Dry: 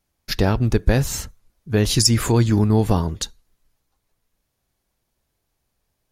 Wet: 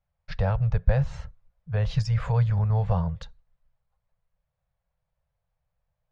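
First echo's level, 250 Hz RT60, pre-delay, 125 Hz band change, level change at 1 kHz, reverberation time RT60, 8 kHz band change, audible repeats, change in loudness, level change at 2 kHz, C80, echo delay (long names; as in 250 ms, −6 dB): no echo audible, no reverb audible, no reverb audible, −3.5 dB, −6.5 dB, no reverb audible, below −25 dB, no echo audible, −6.5 dB, −10.0 dB, no reverb audible, no echo audible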